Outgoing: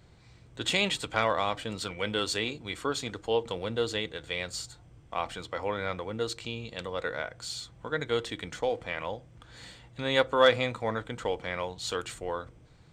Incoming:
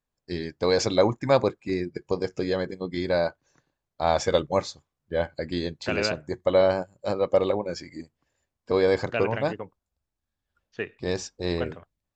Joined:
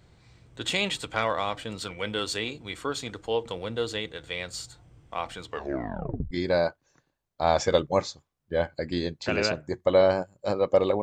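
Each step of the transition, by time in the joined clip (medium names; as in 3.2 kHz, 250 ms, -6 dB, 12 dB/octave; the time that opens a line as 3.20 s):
outgoing
5.45 s: tape stop 0.86 s
6.31 s: go over to incoming from 2.91 s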